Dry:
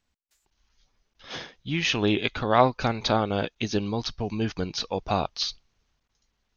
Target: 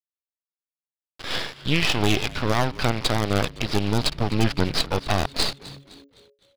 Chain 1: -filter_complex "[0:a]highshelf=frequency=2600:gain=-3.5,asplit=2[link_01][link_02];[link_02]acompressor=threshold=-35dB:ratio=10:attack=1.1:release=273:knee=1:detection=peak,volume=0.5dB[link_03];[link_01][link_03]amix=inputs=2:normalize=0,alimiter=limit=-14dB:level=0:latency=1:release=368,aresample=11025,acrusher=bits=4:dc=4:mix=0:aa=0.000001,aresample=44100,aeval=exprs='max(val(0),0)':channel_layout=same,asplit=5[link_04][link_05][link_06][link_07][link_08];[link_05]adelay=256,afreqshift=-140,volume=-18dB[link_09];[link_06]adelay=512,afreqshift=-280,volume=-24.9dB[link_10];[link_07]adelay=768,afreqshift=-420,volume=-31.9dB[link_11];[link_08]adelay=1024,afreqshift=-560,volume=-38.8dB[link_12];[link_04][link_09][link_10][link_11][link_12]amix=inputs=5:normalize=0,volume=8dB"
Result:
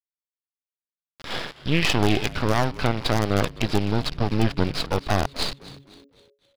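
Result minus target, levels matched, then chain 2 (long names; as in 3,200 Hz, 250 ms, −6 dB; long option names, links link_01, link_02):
4,000 Hz band −2.5 dB
-filter_complex "[0:a]highshelf=frequency=2600:gain=6.5,asplit=2[link_01][link_02];[link_02]acompressor=threshold=-35dB:ratio=10:attack=1.1:release=273:knee=1:detection=peak,volume=0.5dB[link_03];[link_01][link_03]amix=inputs=2:normalize=0,alimiter=limit=-14dB:level=0:latency=1:release=368,aresample=11025,acrusher=bits=4:dc=4:mix=0:aa=0.000001,aresample=44100,aeval=exprs='max(val(0),0)':channel_layout=same,asplit=5[link_04][link_05][link_06][link_07][link_08];[link_05]adelay=256,afreqshift=-140,volume=-18dB[link_09];[link_06]adelay=512,afreqshift=-280,volume=-24.9dB[link_10];[link_07]adelay=768,afreqshift=-420,volume=-31.9dB[link_11];[link_08]adelay=1024,afreqshift=-560,volume=-38.8dB[link_12];[link_04][link_09][link_10][link_11][link_12]amix=inputs=5:normalize=0,volume=8dB"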